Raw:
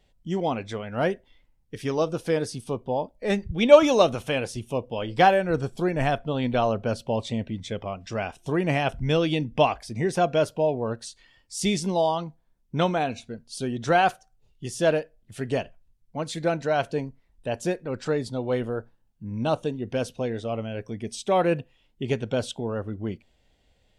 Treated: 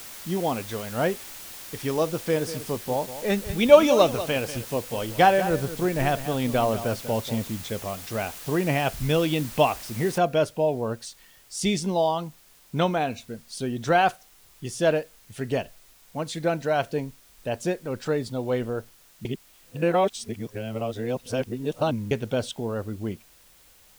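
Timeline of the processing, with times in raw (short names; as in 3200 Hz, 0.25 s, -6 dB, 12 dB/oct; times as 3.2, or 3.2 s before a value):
2.14–7.48 echo 0.191 s -12.5 dB
10.18 noise floor step -41 dB -56 dB
19.25–22.11 reverse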